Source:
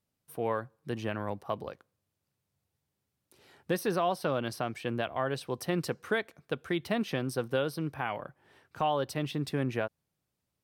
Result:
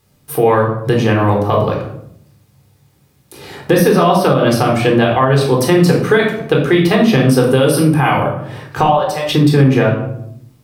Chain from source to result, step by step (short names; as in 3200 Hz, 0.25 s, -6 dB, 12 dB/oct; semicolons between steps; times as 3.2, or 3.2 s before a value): 7.37–8.24 bell 9500 Hz +13 dB 0.79 oct; 8.86–9.29 ladder high-pass 550 Hz, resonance 40%; reverb RT60 0.65 s, pre-delay 15 ms, DRR -0.5 dB; compressor 1.5:1, threshold -40 dBFS, peak gain reduction 8.5 dB; maximiser +22.5 dB; gain -1 dB